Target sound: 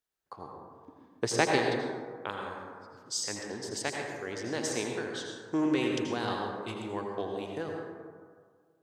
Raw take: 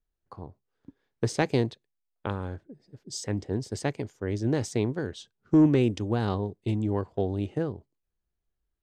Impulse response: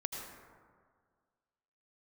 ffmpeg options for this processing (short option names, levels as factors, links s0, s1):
-filter_complex "[0:a]asetnsamples=n=441:p=0,asendcmd='1.58 highpass f 1500',highpass=f=700:p=1[s0];[1:a]atrim=start_sample=2205[s1];[s0][s1]afir=irnorm=-1:irlink=0,volume=1.78"